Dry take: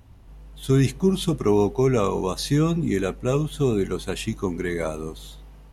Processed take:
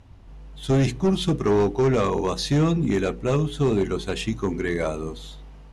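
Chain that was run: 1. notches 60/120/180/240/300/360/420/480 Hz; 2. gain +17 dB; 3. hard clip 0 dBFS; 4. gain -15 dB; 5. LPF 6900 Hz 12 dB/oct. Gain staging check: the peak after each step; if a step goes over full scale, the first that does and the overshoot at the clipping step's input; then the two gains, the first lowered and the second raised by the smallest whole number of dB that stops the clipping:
-8.5, +8.5, 0.0, -15.0, -14.5 dBFS; step 2, 8.5 dB; step 2 +8 dB, step 4 -6 dB

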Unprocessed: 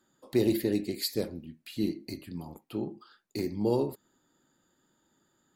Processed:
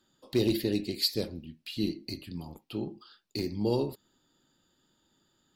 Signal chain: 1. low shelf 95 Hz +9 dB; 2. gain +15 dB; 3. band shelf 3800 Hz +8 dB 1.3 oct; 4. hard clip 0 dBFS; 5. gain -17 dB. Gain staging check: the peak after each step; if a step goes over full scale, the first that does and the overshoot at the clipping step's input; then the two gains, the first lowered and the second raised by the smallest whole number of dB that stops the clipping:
-13.0, +2.0, +4.5, 0.0, -17.0 dBFS; step 2, 4.5 dB; step 2 +10 dB, step 5 -12 dB

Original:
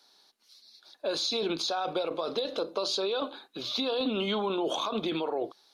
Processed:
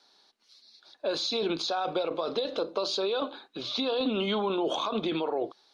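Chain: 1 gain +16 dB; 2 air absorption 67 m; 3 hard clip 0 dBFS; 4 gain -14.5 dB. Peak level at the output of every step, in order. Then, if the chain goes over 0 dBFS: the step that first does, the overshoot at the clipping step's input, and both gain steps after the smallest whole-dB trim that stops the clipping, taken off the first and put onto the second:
-3.0, -4.0, -4.0, -18.5 dBFS; no overload

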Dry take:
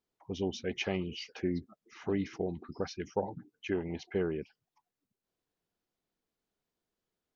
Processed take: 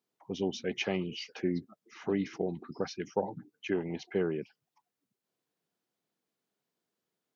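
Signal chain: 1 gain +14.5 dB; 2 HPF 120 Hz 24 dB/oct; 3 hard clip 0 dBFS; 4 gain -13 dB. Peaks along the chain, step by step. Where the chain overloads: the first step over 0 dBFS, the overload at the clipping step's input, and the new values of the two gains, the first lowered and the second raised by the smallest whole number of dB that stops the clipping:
-3.0, -2.0, -2.0, -15.0 dBFS; no overload

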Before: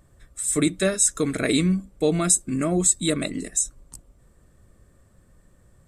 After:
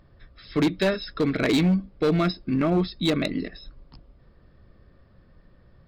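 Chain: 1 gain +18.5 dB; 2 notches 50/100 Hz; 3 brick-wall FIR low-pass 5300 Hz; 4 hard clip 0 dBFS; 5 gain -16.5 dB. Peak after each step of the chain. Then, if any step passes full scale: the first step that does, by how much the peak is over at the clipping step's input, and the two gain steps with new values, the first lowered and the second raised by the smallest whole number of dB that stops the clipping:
+12.5, +12.5, +9.0, 0.0, -16.5 dBFS; step 1, 9.0 dB; step 1 +9.5 dB, step 5 -7.5 dB

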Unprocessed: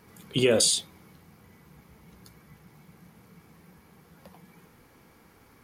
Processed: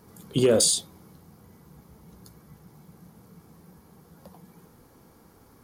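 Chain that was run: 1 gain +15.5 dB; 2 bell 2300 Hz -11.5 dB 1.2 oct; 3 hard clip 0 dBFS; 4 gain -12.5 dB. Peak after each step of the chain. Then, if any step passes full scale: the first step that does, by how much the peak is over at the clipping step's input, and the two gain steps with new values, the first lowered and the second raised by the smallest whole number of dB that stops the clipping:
+5.0, +4.5, 0.0, -12.5 dBFS; step 1, 4.5 dB; step 1 +10.5 dB, step 4 -7.5 dB

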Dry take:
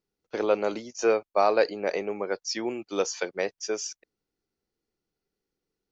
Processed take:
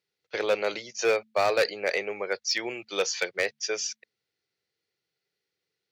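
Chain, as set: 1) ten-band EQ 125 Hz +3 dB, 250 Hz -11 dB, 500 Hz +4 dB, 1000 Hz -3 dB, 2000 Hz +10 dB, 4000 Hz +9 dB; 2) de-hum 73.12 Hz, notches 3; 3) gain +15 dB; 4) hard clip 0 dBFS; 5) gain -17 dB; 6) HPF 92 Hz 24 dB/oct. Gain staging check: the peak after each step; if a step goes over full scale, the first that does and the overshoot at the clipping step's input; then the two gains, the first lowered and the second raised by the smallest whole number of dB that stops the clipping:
-6.0, -6.0, +9.0, 0.0, -17.0, -13.0 dBFS; step 3, 9.0 dB; step 3 +6 dB, step 5 -8 dB

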